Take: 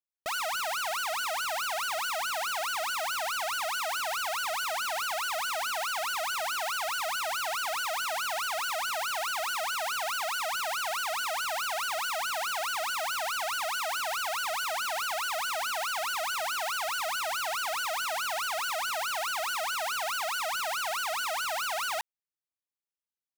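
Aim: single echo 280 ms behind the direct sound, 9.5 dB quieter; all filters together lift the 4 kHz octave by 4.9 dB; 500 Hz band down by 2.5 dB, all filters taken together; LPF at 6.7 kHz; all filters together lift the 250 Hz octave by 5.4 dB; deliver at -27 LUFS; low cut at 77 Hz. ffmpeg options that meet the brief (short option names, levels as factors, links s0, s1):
-af "highpass=77,lowpass=6700,equalizer=f=250:t=o:g=8.5,equalizer=f=500:t=o:g=-5.5,equalizer=f=4000:t=o:g=7,aecho=1:1:280:0.335,volume=1.19"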